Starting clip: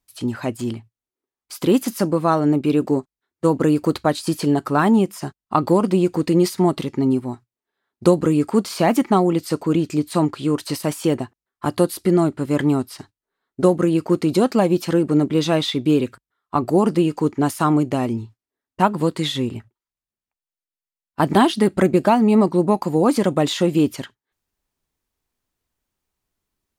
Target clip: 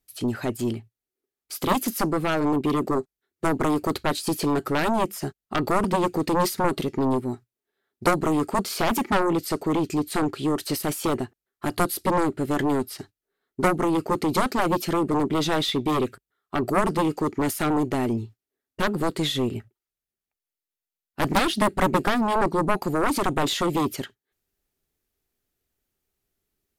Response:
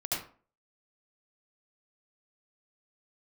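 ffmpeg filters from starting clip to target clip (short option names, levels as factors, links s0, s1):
-af "equalizer=f=400:t=o:w=0.33:g=6,equalizer=f=1000:t=o:w=0.33:g=-9,equalizer=f=12500:t=o:w=0.33:g=7,aeval=exprs='1*(cos(1*acos(clip(val(0)/1,-1,1)))-cos(1*PI/2))+0.398*(cos(3*acos(clip(val(0)/1,-1,1)))-cos(3*PI/2))+0.158*(cos(5*acos(clip(val(0)/1,-1,1)))-cos(5*PI/2))+0.316*(cos(7*acos(clip(val(0)/1,-1,1)))-cos(7*PI/2))+0.02*(cos(8*acos(clip(val(0)/1,-1,1)))-cos(8*PI/2))':c=same,volume=0.562"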